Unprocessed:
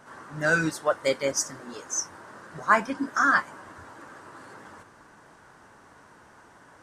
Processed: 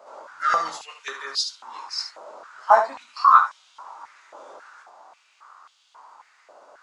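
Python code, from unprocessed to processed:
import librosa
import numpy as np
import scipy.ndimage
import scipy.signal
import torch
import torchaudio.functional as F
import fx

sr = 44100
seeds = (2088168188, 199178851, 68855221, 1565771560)

y = fx.formant_shift(x, sr, semitones=-4)
y = fx.room_early_taps(y, sr, ms=(22, 73), db=(-6.0, -8.0))
y = fx.filter_held_highpass(y, sr, hz=3.7, low_hz=570.0, high_hz=3200.0)
y = F.gain(torch.from_numpy(y), -2.5).numpy()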